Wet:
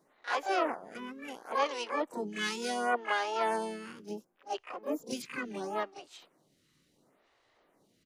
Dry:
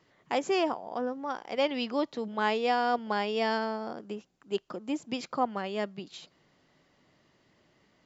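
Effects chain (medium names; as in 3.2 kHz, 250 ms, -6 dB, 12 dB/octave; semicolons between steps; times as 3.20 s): harmony voices -3 st -16 dB, +7 st -8 dB, +12 st -1 dB; reverse echo 34 ms -12.5 dB; lamp-driven phase shifter 0.71 Hz; trim -3.5 dB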